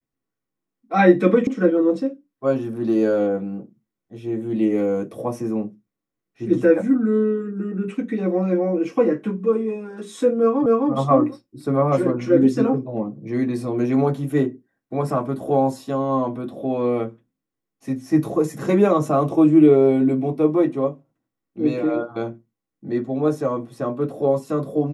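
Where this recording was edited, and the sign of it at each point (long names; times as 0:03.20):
0:01.47: cut off before it has died away
0:10.66: the same again, the last 0.26 s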